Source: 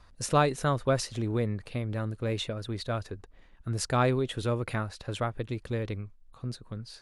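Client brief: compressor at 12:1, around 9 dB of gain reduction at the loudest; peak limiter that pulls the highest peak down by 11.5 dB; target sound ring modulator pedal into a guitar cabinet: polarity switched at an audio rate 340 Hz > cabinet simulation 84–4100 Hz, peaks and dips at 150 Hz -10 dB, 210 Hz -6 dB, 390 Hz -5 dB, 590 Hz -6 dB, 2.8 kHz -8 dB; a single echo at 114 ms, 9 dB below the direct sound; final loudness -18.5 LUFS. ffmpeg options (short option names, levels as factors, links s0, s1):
-af "acompressor=threshold=0.0398:ratio=12,alimiter=level_in=2.37:limit=0.0631:level=0:latency=1,volume=0.422,aecho=1:1:114:0.355,aeval=exprs='val(0)*sgn(sin(2*PI*340*n/s))':c=same,highpass=84,equalizer=f=150:t=q:w=4:g=-10,equalizer=f=210:t=q:w=4:g=-6,equalizer=f=390:t=q:w=4:g=-5,equalizer=f=590:t=q:w=4:g=-6,equalizer=f=2800:t=q:w=4:g=-8,lowpass=f=4100:w=0.5412,lowpass=f=4100:w=1.3066,volume=17.8"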